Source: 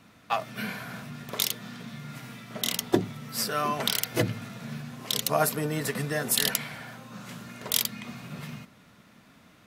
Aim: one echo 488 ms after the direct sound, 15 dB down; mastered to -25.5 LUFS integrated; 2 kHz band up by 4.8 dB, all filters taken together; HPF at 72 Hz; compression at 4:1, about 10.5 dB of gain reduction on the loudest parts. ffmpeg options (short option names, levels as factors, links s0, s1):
-af "highpass=72,equalizer=f=2000:t=o:g=6,acompressor=threshold=0.0355:ratio=4,aecho=1:1:488:0.178,volume=2.66"